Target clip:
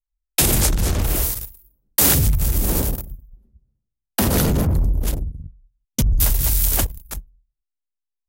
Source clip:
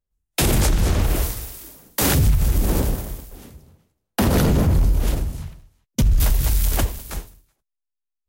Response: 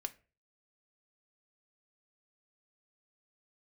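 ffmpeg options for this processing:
-af "aemphasis=mode=production:type=cd,anlmdn=398,volume=-1dB"

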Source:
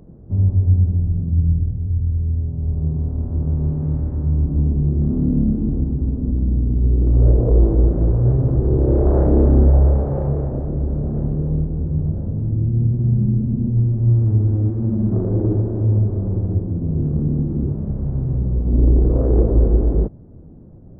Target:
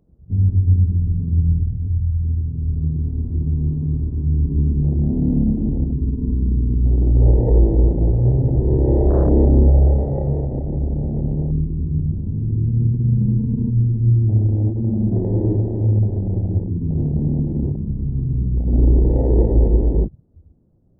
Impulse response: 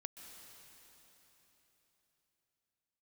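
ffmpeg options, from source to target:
-af "afwtdn=0.0794"

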